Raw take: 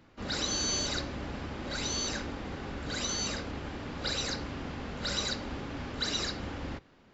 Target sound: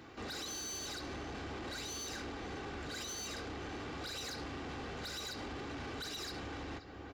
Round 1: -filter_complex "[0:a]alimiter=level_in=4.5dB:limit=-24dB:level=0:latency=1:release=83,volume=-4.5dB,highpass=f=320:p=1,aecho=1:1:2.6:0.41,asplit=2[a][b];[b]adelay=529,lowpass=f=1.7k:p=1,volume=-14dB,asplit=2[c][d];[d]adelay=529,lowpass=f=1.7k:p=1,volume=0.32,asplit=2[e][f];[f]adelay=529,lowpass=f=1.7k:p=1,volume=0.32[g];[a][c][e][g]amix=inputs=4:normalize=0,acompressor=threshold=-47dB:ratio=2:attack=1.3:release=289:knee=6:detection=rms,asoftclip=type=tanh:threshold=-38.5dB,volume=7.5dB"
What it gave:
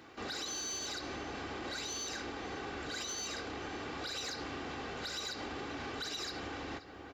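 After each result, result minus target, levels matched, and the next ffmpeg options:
soft clip: distortion -10 dB; 125 Hz band -5.5 dB
-filter_complex "[0:a]alimiter=level_in=4.5dB:limit=-24dB:level=0:latency=1:release=83,volume=-4.5dB,highpass=f=320:p=1,aecho=1:1:2.6:0.41,asplit=2[a][b];[b]adelay=529,lowpass=f=1.7k:p=1,volume=-14dB,asplit=2[c][d];[d]adelay=529,lowpass=f=1.7k:p=1,volume=0.32,asplit=2[e][f];[f]adelay=529,lowpass=f=1.7k:p=1,volume=0.32[g];[a][c][e][g]amix=inputs=4:normalize=0,acompressor=threshold=-47dB:ratio=2:attack=1.3:release=289:knee=6:detection=rms,asoftclip=type=tanh:threshold=-46dB,volume=7.5dB"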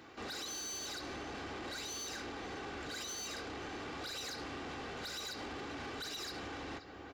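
125 Hz band -5.0 dB
-filter_complex "[0:a]alimiter=level_in=4.5dB:limit=-24dB:level=0:latency=1:release=83,volume=-4.5dB,highpass=f=120:p=1,aecho=1:1:2.6:0.41,asplit=2[a][b];[b]adelay=529,lowpass=f=1.7k:p=1,volume=-14dB,asplit=2[c][d];[d]adelay=529,lowpass=f=1.7k:p=1,volume=0.32,asplit=2[e][f];[f]adelay=529,lowpass=f=1.7k:p=1,volume=0.32[g];[a][c][e][g]amix=inputs=4:normalize=0,acompressor=threshold=-47dB:ratio=2:attack=1.3:release=289:knee=6:detection=rms,asoftclip=type=tanh:threshold=-46dB,volume=7.5dB"

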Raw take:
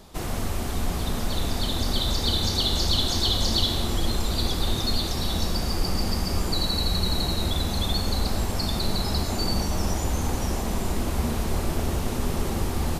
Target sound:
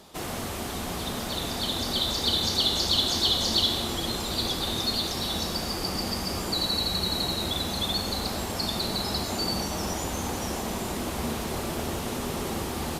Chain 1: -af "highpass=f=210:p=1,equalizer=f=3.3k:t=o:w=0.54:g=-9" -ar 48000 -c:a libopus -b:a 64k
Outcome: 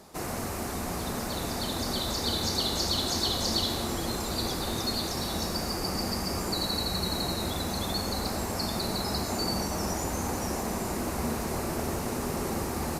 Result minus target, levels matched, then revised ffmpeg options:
4000 Hz band -2.5 dB
-af "highpass=f=210:p=1,equalizer=f=3.3k:t=o:w=0.54:g=2" -ar 48000 -c:a libopus -b:a 64k

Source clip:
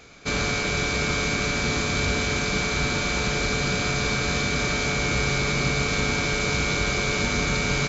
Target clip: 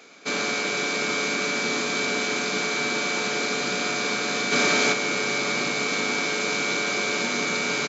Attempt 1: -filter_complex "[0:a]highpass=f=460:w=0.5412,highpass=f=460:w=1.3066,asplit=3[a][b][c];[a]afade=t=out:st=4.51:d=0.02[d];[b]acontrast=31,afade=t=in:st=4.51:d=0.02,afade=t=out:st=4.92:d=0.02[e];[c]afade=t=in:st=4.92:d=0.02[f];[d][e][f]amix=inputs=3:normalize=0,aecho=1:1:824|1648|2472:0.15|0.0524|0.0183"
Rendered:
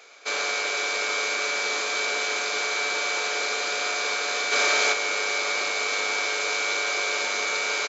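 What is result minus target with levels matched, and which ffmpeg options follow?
250 Hz band -15.0 dB
-filter_complex "[0:a]highpass=f=220:w=0.5412,highpass=f=220:w=1.3066,asplit=3[a][b][c];[a]afade=t=out:st=4.51:d=0.02[d];[b]acontrast=31,afade=t=in:st=4.51:d=0.02,afade=t=out:st=4.92:d=0.02[e];[c]afade=t=in:st=4.92:d=0.02[f];[d][e][f]amix=inputs=3:normalize=0,aecho=1:1:824|1648|2472:0.15|0.0524|0.0183"

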